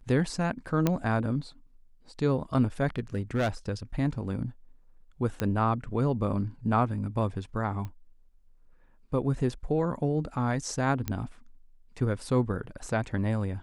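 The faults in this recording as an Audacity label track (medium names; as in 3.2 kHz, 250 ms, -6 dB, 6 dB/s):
0.870000	0.870000	pop -11 dBFS
2.960000	3.490000	clipped -22.5 dBFS
5.400000	5.400000	pop -14 dBFS
7.850000	7.850000	pop -26 dBFS
11.080000	11.080000	pop -16 dBFS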